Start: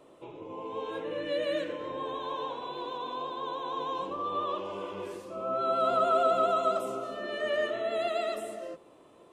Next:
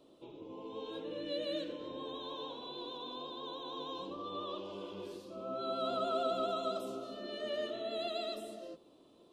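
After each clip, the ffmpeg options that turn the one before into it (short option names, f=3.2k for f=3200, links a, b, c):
-af "equalizer=f=125:t=o:w=1:g=-4,equalizer=f=250:t=o:w=1:g=4,equalizer=f=500:t=o:w=1:g=-3,equalizer=f=1k:t=o:w=1:g=-5,equalizer=f=2k:t=o:w=1:g=-12,equalizer=f=4k:t=o:w=1:g=10,equalizer=f=8k:t=o:w=1:g=-6,volume=-4dB"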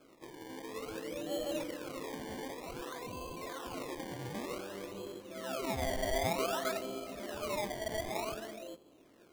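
-af "acrusher=samples=23:mix=1:aa=0.000001:lfo=1:lforange=23:lforate=0.54,volume=1dB"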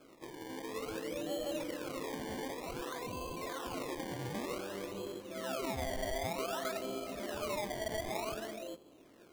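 -af "acompressor=threshold=-36dB:ratio=5,volume=2dB"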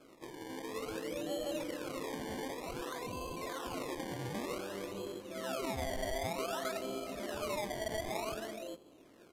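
-af "aresample=32000,aresample=44100"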